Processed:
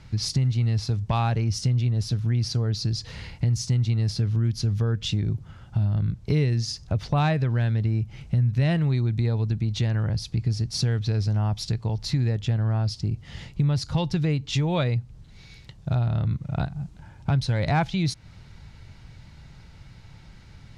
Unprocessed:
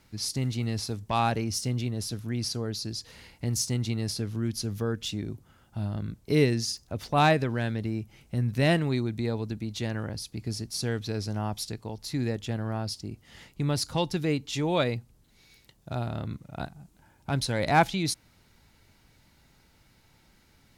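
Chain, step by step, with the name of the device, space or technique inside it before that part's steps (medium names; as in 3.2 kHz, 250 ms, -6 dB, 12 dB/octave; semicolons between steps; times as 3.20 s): 13.08–13.64 s: dynamic bell 1.4 kHz, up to -5 dB, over -57 dBFS, Q 0.89; jukebox (low-pass 5.7 kHz 12 dB/octave; resonant low shelf 190 Hz +8 dB, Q 1.5; compression 3:1, threshold -32 dBFS, peak gain reduction 14.5 dB); trim +8.5 dB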